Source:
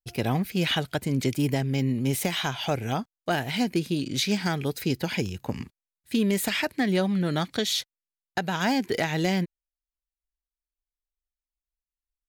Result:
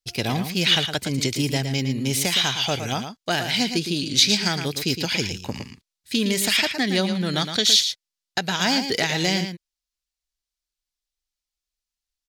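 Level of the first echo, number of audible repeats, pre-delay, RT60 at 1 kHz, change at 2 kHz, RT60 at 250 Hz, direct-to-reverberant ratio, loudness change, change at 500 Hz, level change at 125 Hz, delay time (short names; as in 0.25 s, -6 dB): -8.5 dB, 1, none, none, +5.5 dB, none, none, +5.5 dB, +1.0 dB, +0.5 dB, 0.113 s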